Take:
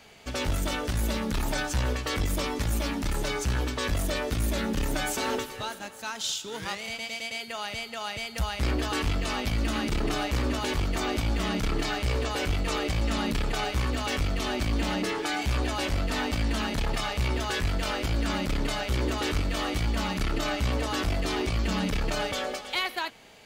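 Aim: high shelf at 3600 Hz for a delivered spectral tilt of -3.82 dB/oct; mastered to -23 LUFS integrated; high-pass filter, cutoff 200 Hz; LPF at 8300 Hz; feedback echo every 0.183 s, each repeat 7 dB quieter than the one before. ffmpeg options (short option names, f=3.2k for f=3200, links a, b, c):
-af "highpass=200,lowpass=8.3k,highshelf=f=3.6k:g=-5,aecho=1:1:183|366|549|732|915:0.447|0.201|0.0905|0.0407|0.0183,volume=8.5dB"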